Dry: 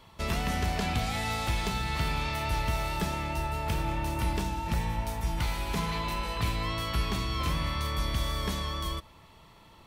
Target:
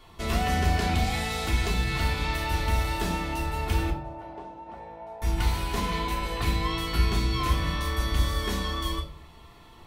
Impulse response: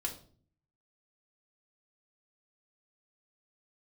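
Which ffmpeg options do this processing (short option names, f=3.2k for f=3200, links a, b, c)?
-filter_complex "[0:a]asettb=1/sr,asplit=3[a][b][c];[a]atrim=end=3.904[d];[b]atrim=start=3.9:end=5.22,asetpts=PTS-STARTPTS,afade=t=in:d=0.004:c=qsin,afade=t=out:st=1.316:d=0.004:c=qsin,bandpass=f=660:t=q:w=3.2:csg=0[e];[c]atrim=start=5.216[f];[d][e]acrossfade=d=0.004:c1=hsin:c2=qsin[g];[g][f]acrossfade=d=0.004:c1=qsin:c2=hsin[h];[1:a]atrim=start_sample=2205[i];[h][i]afir=irnorm=-1:irlink=0,volume=2dB"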